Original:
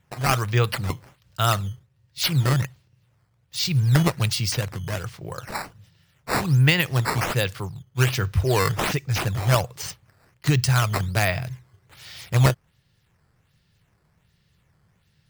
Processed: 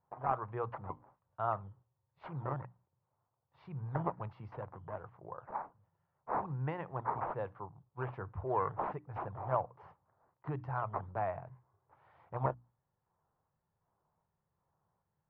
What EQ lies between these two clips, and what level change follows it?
four-pole ladder low-pass 1.1 kHz, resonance 50%; bass shelf 280 Hz -10.5 dB; hum notches 60/120/180/240/300 Hz; -2.0 dB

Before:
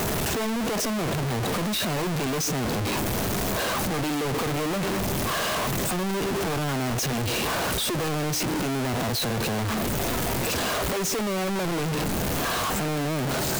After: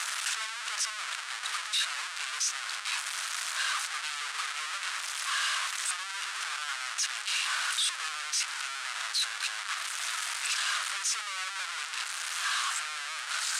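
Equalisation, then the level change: Chebyshev band-pass 1.3–9.2 kHz, order 3; 0.0 dB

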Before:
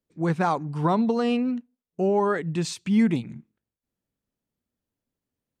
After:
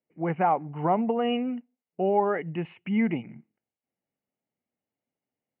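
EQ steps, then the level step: high-pass 130 Hz; rippled Chebyshev low-pass 3 kHz, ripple 9 dB; peaking EQ 1 kHz -6 dB 0.21 oct; +4.0 dB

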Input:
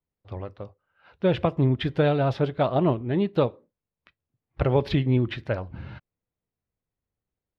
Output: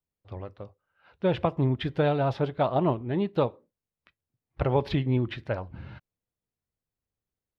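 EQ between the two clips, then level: dynamic bell 890 Hz, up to +5 dB, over -39 dBFS, Q 2.1; -3.5 dB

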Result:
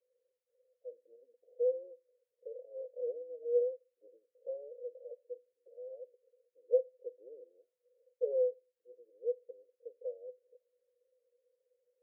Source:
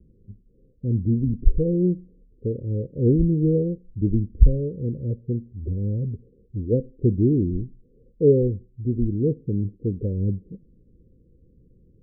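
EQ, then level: rippled Chebyshev high-pass 480 Hz, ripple 6 dB; 0.0 dB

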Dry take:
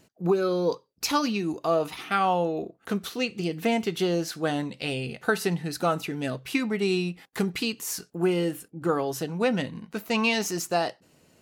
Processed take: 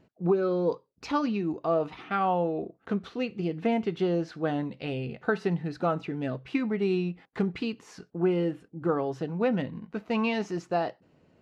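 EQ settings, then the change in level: tape spacing loss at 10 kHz 31 dB; 0.0 dB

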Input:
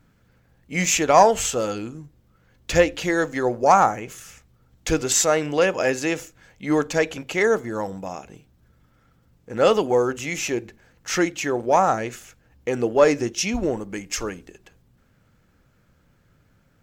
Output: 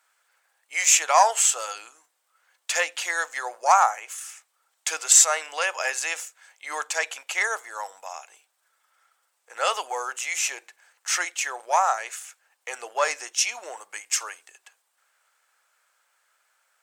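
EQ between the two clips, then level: high-pass 780 Hz 24 dB/octave; peaking EQ 8.8 kHz +12 dB 0.53 oct; 0.0 dB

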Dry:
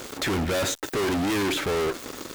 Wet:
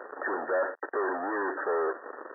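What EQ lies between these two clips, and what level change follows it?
high-pass 420 Hz 24 dB/octave; brick-wall FIR low-pass 1.9 kHz; 0.0 dB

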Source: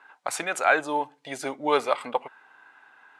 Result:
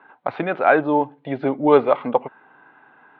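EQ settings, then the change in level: high-pass 130 Hz; steep low-pass 3.9 kHz 48 dB/octave; tilt EQ -5 dB/octave; +4.5 dB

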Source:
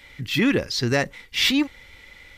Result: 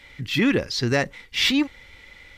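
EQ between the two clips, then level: treble shelf 11 kHz -8.5 dB; 0.0 dB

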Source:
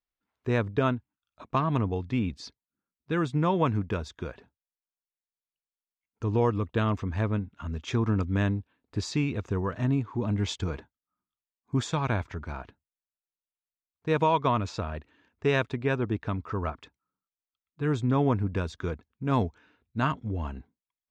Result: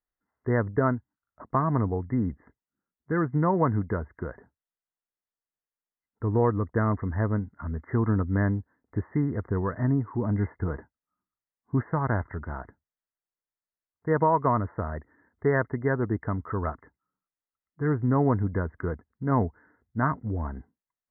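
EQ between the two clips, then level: brick-wall FIR low-pass 2.1 kHz; +1.5 dB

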